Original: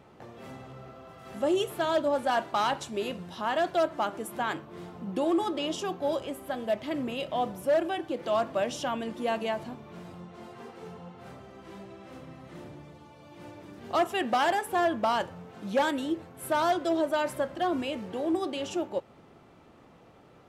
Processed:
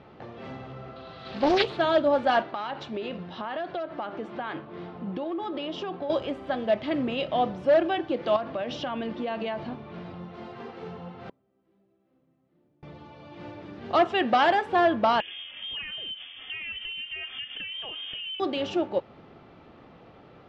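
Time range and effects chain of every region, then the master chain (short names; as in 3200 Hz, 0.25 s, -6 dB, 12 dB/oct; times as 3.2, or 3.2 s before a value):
0.96–1.77 bell 4000 Hz +15 dB 0.55 oct + Doppler distortion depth 0.58 ms
2.42–6.1 HPF 130 Hz 6 dB/oct + compressor 12:1, threshold -32 dBFS + air absorption 110 m
8.36–10.23 LPF 5600 Hz + compressor 10:1, threshold -31 dBFS
11.29–12.83 bell 270 Hz +11 dB 2.5 oct + flipped gate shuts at -38 dBFS, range -36 dB
15.2–18.4 compressor 12:1, threshold -37 dBFS + inverted band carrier 3400 Hz
whole clip: LPF 4500 Hz 24 dB/oct; notch 980 Hz, Q 24; gain +4.5 dB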